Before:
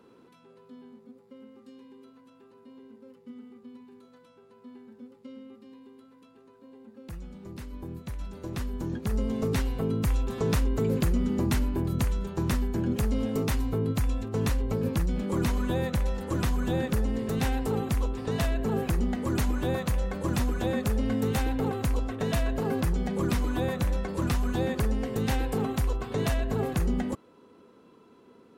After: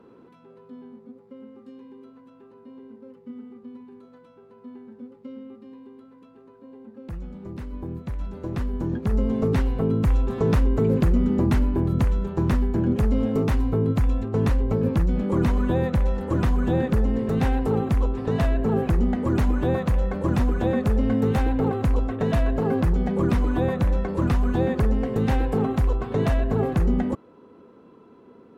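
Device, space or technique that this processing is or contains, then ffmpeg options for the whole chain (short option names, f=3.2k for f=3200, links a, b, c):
through cloth: -af "highshelf=f=3k:g=-16,volume=6dB"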